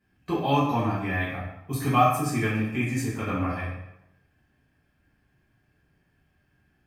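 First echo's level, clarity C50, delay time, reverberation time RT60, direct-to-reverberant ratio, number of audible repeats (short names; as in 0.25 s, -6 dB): none, 1.5 dB, none, 0.85 s, -10.0 dB, none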